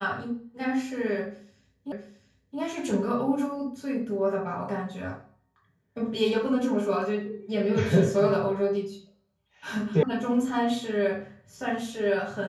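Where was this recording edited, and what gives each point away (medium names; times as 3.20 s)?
1.92 s: repeat of the last 0.67 s
10.03 s: sound stops dead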